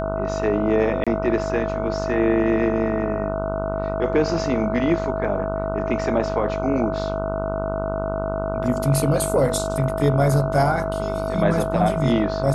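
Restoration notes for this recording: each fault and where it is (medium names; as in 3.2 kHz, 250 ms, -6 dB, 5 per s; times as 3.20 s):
buzz 50 Hz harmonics 30 -28 dBFS
whine 650 Hz -26 dBFS
1.04–1.07 s: dropout 26 ms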